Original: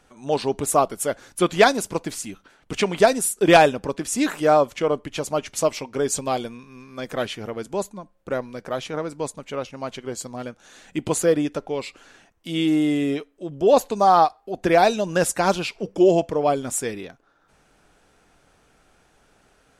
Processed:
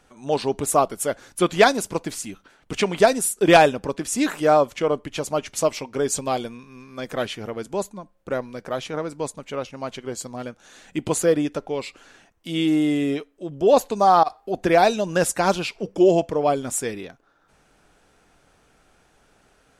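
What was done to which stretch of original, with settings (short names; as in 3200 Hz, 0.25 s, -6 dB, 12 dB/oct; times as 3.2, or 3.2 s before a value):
14.23–14.64 negative-ratio compressor -23 dBFS, ratio -0.5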